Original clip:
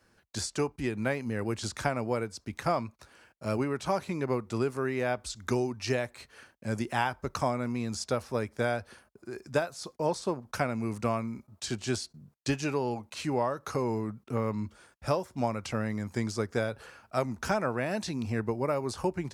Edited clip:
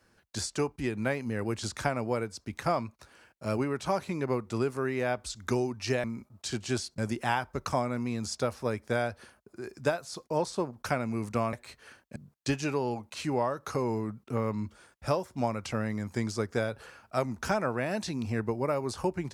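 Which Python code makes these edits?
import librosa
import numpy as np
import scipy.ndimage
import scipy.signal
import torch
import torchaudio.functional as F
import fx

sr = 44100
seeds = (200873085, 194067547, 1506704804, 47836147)

y = fx.edit(x, sr, fx.swap(start_s=6.04, length_s=0.63, other_s=11.22, other_length_s=0.94), tone=tone)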